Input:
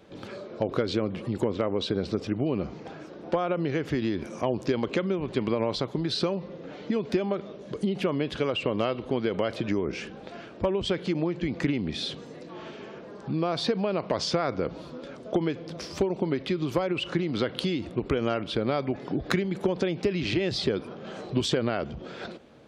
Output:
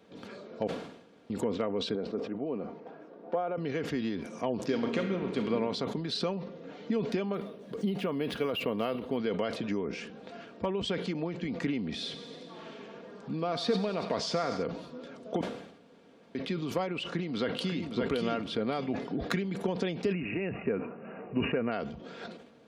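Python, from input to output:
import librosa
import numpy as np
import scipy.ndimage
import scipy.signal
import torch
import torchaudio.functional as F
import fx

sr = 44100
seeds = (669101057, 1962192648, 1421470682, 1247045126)

y = fx.bandpass_q(x, sr, hz=570.0, q=0.66, at=(1.95, 3.58))
y = fx.reverb_throw(y, sr, start_s=4.66, length_s=0.81, rt60_s=1.4, drr_db=3.5)
y = fx.resample_linear(y, sr, factor=3, at=(7.34, 9.17))
y = fx.echo_thinned(y, sr, ms=96, feedback_pct=72, hz=420.0, wet_db=-12, at=(12.04, 14.62), fade=0.02)
y = fx.echo_throw(y, sr, start_s=16.99, length_s=0.97, ms=570, feedback_pct=25, wet_db=-5.5)
y = fx.brickwall_lowpass(y, sr, high_hz=2900.0, at=(20.11, 21.71), fade=0.02)
y = fx.edit(y, sr, fx.room_tone_fill(start_s=0.67, length_s=0.63),
    fx.room_tone_fill(start_s=15.41, length_s=0.94), tone=tone)
y = scipy.signal.sosfilt(scipy.signal.butter(2, 96.0, 'highpass', fs=sr, output='sos'), y)
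y = y + 0.41 * np.pad(y, (int(4.3 * sr / 1000.0), 0))[:len(y)]
y = fx.sustainer(y, sr, db_per_s=72.0)
y = F.gain(torch.from_numpy(y), -5.5).numpy()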